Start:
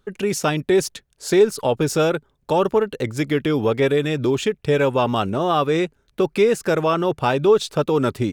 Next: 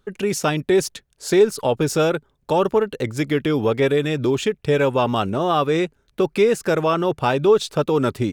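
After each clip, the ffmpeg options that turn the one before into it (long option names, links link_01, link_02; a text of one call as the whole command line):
ffmpeg -i in.wav -af anull out.wav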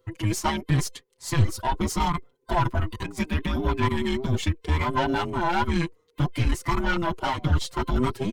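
ffmpeg -i in.wav -filter_complex "[0:a]afftfilt=real='real(if(between(b,1,1008),(2*floor((b-1)/24)+1)*24-b,b),0)':imag='imag(if(between(b,1,1008),(2*floor((b-1)/24)+1)*24-b,b),0)*if(between(b,1,1008),-1,1)':win_size=2048:overlap=0.75,aeval=exprs='(tanh(5.62*val(0)+0.6)-tanh(0.6))/5.62':channel_layout=same,asplit=2[link_01][link_02];[link_02]adelay=5.5,afreqshift=-0.74[link_03];[link_01][link_03]amix=inputs=2:normalize=1,volume=1.5dB" out.wav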